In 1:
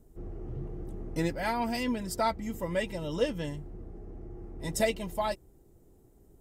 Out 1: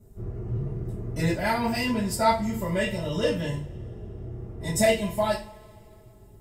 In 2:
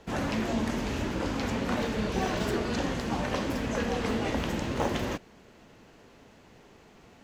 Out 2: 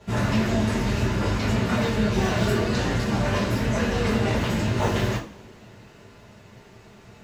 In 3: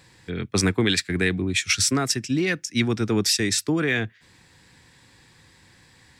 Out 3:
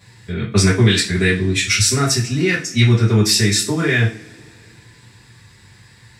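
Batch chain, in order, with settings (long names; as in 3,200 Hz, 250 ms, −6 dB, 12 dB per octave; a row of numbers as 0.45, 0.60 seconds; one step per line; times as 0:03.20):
low-shelf EQ 140 Hz +4.5 dB
coupled-rooms reverb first 0.33 s, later 2.7 s, from −28 dB, DRR −8.5 dB
level −3.5 dB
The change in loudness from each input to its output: +6.0, +6.5, +7.0 LU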